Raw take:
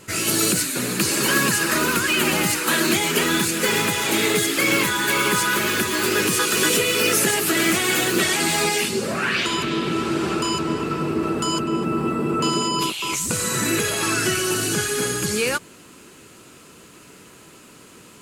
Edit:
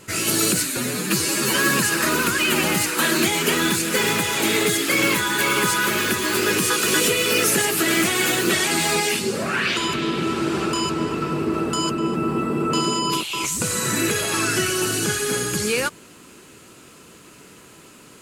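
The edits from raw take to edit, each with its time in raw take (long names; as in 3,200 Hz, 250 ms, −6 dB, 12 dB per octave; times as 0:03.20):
0:00.77–0:01.39: time-stretch 1.5×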